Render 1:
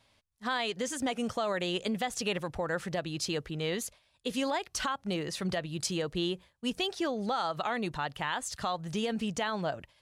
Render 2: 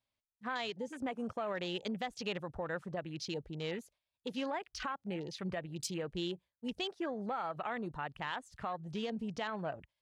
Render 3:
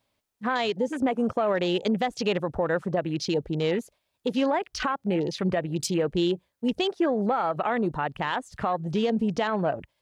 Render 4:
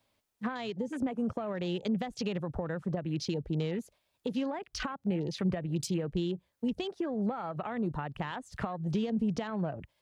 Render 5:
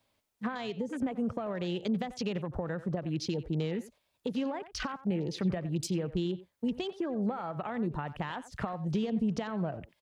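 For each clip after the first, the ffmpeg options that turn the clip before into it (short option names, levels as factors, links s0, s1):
-af "afwtdn=0.00891,volume=0.501"
-filter_complex "[0:a]equalizer=f=380:w=0.46:g=6.5,asplit=2[s0][s1];[s1]alimiter=level_in=3.16:limit=0.0631:level=0:latency=1:release=324,volume=0.316,volume=1.06[s2];[s0][s2]amix=inputs=2:normalize=0,volume=1.88"
-filter_complex "[0:a]acrossover=split=200[s0][s1];[s1]acompressor=threshold=0.02:ratio=10[s2];[s0][s2]amix=inputs=2:normalize=0"
-filter_complex "[0:a]asplit=2[s0][s1];[s1]adelay=90,highpass=300,lowpass=3400,asoftclip=type=hard:threshold=0.0335,volume=0.2[s2];[s0][s2]amix=inputs=2:normalize=0"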